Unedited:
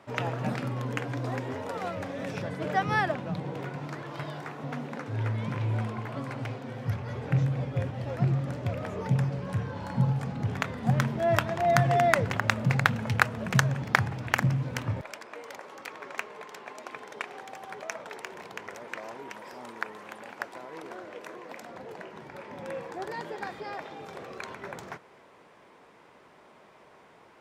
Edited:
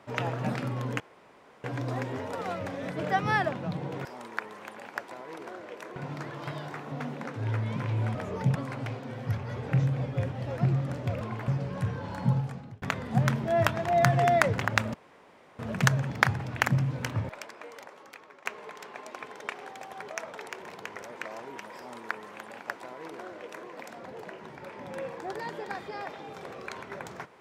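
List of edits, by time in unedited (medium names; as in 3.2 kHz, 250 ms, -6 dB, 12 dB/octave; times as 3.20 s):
1.00 s: insert room tone 0.64 s
2.26–2.53 s: delete
5.87–6.14 s: swap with 8.80–9.20 s
10.00–10.54 s: fade out linear
12.66–13.31 s: room tone
15.10–16.17 s: fade out, to -13.5 dB
19.49–21.40 s: copy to 3.68 s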